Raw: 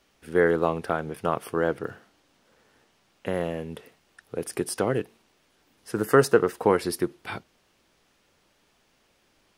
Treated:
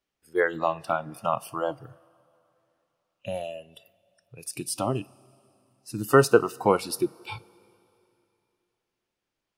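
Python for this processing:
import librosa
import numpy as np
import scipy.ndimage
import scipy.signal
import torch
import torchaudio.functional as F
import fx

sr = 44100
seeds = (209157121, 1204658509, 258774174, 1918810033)

y = fx.noise_reduce_blind(x, sr, reduce_db=21)
y = fx.rev_double_slope(y, sr, seeds[0], early_s=0.22, late_s=2.9, knee_db=-18, drr_db=16.5)
y = y * librosa.db_to_amplitude(1.5)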